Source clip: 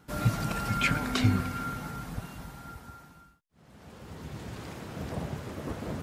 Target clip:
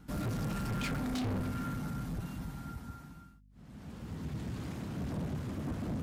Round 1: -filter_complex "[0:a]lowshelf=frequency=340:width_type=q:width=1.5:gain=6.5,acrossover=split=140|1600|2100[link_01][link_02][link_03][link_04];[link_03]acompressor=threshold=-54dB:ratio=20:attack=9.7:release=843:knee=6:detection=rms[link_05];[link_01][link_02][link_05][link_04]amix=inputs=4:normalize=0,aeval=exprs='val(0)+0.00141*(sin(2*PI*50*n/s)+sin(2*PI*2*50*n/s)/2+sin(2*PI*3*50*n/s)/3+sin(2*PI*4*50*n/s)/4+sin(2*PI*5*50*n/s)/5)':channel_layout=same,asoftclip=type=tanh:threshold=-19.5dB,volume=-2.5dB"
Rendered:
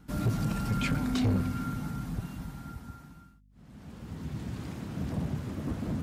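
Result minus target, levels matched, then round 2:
soft clipping: distortion −5 dB
-filter_complex "[0:a]lowshelf=frequency=340:width_type=q:width=1.5:gain=6.5,acrossover=split=140|1600|2100[link_01][link_02][link_03][link_04];[link_03]acompressor=threshold=-54dB:ratio=20:attack=9.7:release=843:knee=6:detection=rms[link_05];[link_01][link_02][link_05][link_04]amix=inputs=4:normalize=0,aeval=exprs='val(0)+0.00141*(sin(2*PI*50*n/s)+sin(2*PI*2*50*n/s)/2+sin(2*PI*3*50*n/s)/3+sin(2*PI*4*50*n/s)/4+sin(2*PI*5*50*n/s)/5)':channel_layout=same,asoftclip=type=tanh:threshold=-29.5dB,volume=-2.5dB"

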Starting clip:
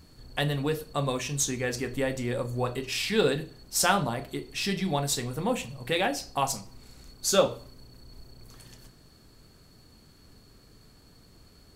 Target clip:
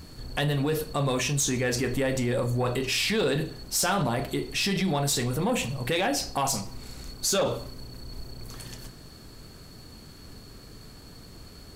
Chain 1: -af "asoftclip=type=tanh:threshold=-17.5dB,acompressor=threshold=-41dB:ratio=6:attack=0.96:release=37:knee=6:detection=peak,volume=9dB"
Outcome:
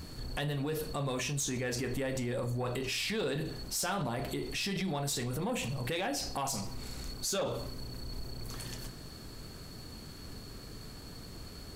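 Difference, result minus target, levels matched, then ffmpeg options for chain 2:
downward compressor: peak gain reduction +8.5 dB
-af "asoftclip=type=tanh:threshold=-17.5dB,acompressor=threshold=-31dB:ratio=6:attack=0.96:release=37:knee=6:detection=peak,volume=9dB"

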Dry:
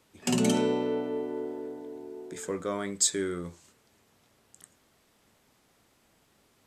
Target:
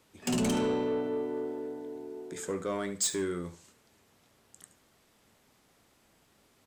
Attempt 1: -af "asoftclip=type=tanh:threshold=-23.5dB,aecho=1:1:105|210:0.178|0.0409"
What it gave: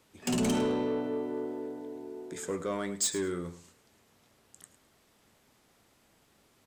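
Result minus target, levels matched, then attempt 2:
echo 33 ms late
-af "asoftclip=type=tanh:threshold=-23.5dB,aecho=1:1:72|144:0.178|0.0409"

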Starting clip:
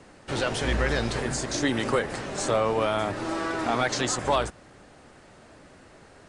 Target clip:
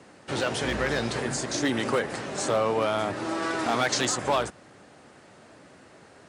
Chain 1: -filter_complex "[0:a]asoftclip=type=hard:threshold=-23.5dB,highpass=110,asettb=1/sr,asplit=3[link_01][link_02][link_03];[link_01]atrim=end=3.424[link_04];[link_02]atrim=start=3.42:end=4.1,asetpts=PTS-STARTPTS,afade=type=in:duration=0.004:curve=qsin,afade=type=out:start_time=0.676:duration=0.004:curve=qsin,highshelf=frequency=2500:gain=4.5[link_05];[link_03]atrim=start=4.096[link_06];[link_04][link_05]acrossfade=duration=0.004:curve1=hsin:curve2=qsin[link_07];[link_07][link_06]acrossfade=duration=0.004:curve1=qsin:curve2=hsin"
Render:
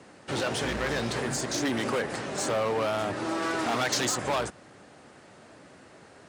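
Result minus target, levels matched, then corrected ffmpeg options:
hard clipping: distortion +11 dB
-filter_complex "[0:a]asoftclip=type=hard:threshold=-17.5dB,highpass=110,asettb=1/sr,asplit=3[link_01][link_02][link_03];[link_01]atrim=end=3.424[link_04];[link_02]atrim=start=3.42:end=4.1,asetpts=PTS-STARTPTS,afade=type=in:duration=0.004:curve=qsin,afade=type=out:start_time=0.676:duration=0.004:curve=qsin,highshelf=frequency=2500:gain=4.5[link_05];[link_03]atrim=start=4.096[link_06];[link_04][link_05]acrossfade=duration=0.004:curve1=hsin:curve2=qsin[link_07];[link_07][link_06]acrossfade=duration=0.004:curve1=qsin:curve2=hsin"

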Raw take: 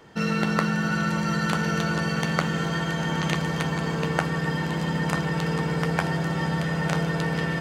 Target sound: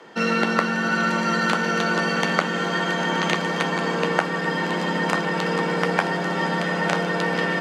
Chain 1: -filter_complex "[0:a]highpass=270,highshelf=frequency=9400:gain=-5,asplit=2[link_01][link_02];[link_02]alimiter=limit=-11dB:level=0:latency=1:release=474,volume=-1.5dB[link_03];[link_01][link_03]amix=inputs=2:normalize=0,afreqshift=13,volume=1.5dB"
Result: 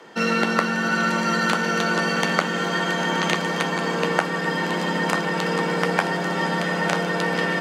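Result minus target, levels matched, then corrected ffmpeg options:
8,000 Hz band +2.5 dB
-filter_complex "[0:a]highpass=270,highshelf=frequency=9400:gain=-14.5,asplit=2[link_01][link_02];[link_02]alimiter=limit=-11dB:level=0:latency=1:release=474,volume=-1.5dB[link_03];[link_01][link_03]amix=inputs=2:normalize=0,afreqshift=13,volume=1.5dB"

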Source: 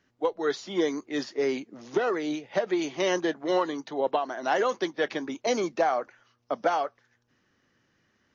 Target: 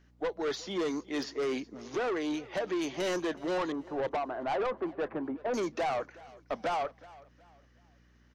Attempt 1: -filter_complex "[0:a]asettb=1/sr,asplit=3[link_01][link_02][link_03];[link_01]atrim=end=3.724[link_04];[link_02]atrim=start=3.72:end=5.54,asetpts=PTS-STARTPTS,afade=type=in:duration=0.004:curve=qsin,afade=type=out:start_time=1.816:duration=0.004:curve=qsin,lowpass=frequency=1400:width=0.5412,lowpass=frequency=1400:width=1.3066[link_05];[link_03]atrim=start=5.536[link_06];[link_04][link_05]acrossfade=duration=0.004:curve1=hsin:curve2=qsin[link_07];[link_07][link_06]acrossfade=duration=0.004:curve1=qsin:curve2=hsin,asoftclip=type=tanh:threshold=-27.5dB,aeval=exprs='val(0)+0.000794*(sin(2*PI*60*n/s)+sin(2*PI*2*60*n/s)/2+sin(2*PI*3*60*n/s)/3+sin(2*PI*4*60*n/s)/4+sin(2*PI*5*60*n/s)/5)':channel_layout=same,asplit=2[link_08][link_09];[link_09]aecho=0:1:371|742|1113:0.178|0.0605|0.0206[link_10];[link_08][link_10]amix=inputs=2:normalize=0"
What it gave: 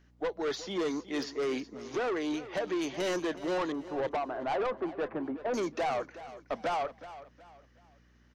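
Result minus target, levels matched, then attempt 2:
echo-to-direct +6 dB
-filter_complex "[0:a]asettb=1/sr,asplit=3[link_01][link_02][link_03];[link_01]atrim=end=3.724[link_04];[link_02]atrim=start=3.72:end=5.54,asetpts=PTS-STARTPTS,afade=type=in:duration=0.004:curve=qsin,afade=type=out:start_time=1.816:duration=0.004:curve=qsin,lowpass=frequency=1400:width=0.5412,lowpass=frequency=1400:width=1.3066[link_05];[link_03]atrim=start=5.536[link_06];[link_04][link_05]acrossfade=duration=0.004:curve1=hsin:curve2=qsin[link_07];[link_07][link_06]acrossfade=duration=0.004:curve1=qsin:curve2=hsin,asoftclip=type=tanh:threshold=-27.5dB,aeval=exprs='val(0)+0.000794*(sin(2*PI*60*n/s)+sin(2*PI*2*60*n/s)/2+sin(2*PI*3*60*n/s)/3+sin(2*PI*4*60*n/s)/4+sin(2*PI*5*60*n/s)/5)':channel_layout=same,asplit=2[link_08][link_09];[link_09]aecho=0:1:371|742|1113:0.0891|0.0303|0.0103[link_10];[link_08][link_10]amix=inputs=2:normalize=0"

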